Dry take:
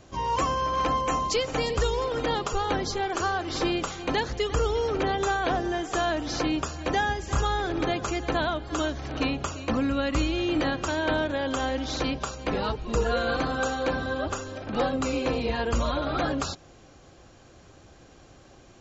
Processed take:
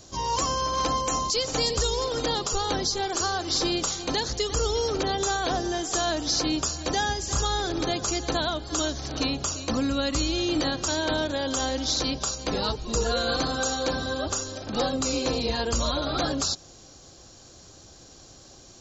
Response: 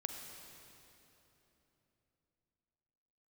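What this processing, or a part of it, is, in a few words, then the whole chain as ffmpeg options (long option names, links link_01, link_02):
over-bright horn tweeter: -af "highshelf=frequency=3400:width_type=q:width=1.5:gain=10.5,alimiter=limit=-15.5dB:level=0:latency=1:release=79"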